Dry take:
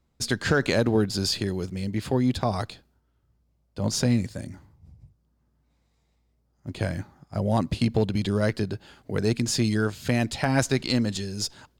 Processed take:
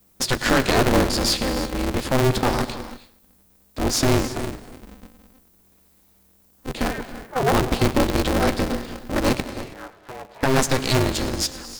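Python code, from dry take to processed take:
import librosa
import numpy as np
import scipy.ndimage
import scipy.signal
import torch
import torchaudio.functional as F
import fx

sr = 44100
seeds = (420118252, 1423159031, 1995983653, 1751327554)

p1 = fx.sine_speech(x, sr, at=(6.91, 7.52))
p2 = fx.cheby_harmonics(p1, sr, harmonics=(5, 6), levels_db=(-18, -16), full_scale_db=-10.5)
p3 = fx.dmg_noise_colour(p2, sr, seeds[0], colour='violet', level_db=-62.0)
p4 = fx.ladder_bandpass(p3, sr, hz=820.0, resonance_pct=40, at=(9.4, 10.43))
p5 = p4 + fx.echo_feedback(p4, sr, ms=104, feedback_pct=38, wet_db=-18.0, dry=0)
p6 = fx.rev_gated(p5, sr, seeds[1], gate_ms=350, shape='rising', drr_db=12.0)
p7 = p6 * np.sign(np.sin(2.0 * np.pi * 130.0 * np.arange(len(p6)) / sr))
y = p7 * librosa.db_to_amplitude(2.0)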